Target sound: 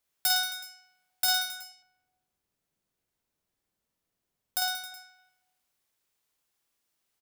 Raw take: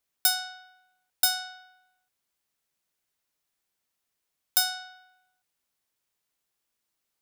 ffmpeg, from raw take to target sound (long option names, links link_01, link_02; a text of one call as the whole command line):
ffmpeg -i in.wav -filter_complex "[0:a]asettb=1/sr,asplit=3[link_01][link_02][link_03];[link_01]atrim=end=1.454[link_04];[link_02]atrim=start=1.45:end=4.92,asetpts=PTS-STARTPTS,afade=type=in:duration=0.004:curve=qsin,afade=type=out:start_time=3.466:duration=0.004:curve=qsin,tiltshelf=frequency=640:gain=6.5[link_05];[link_03]atrim=start=4.916[link_06];[link_04][link_05]acrossfade=duration=0.004:curve1=hsin:curve2=qsin[link_07];[link_07][link_06]acrossfade=duration=0.004:curve1=qsin:curve2=hsin,asoftclip=type=tanh:threshold=-20dB,aecho=1:1:50|110|182|268.4|372.1:0.631|0.398|0.251|0.158|0.1" out.wav